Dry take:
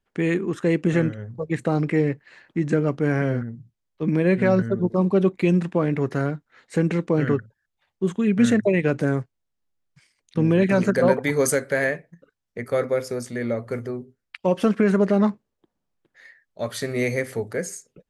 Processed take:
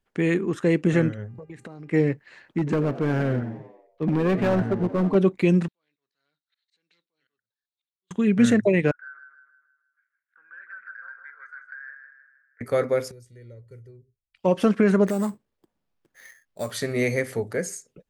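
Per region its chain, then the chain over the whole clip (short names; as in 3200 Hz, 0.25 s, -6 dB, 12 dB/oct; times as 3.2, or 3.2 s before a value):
1.27–1.92 compressor 16:1, threshold -36 dBFS + buzz 400 Hz, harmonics 7, -66 dBFS -7 dB/oct
2.58–5.15 high shelf 5000 Hz -10.5 dB + hard clip -18 dBFS + frequency-shifting echo 88 ms, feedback 57%, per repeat +92 Hz, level -16 dB
5.68–8.11 compressor 3:1, threshold -38 dBFS + band-pass 4000 Hz, Q 5.5 + auto swell 0.309 s
8.91–12.61 Butterworth band-pass 1500 Hz, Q 6.3 + compressor 4:1, threshold -38 dBFS + feedback echo 0.158 s, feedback 47%, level -7 dB
13.11–14.37 passive tone stack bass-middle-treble 10-0-1 + comb 2.1 ms, depth 73%
15.07–16.71 compressor 2:1, threshold -25 dBFS + sample-rate reducer 8200 Hz
whole clip: dry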